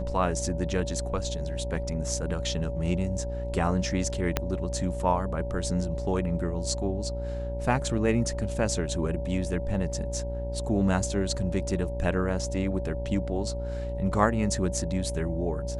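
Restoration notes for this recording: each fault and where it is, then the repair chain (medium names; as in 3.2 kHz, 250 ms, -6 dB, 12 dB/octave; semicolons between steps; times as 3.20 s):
buzz 60 Hz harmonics 16 -33 dBFS
whine 570 Hz -35 dBFS
4.37 s: pop -9 dBFS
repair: de-click; band-stop 570 Hz, Q 30; de-hum 60 Hz, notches 16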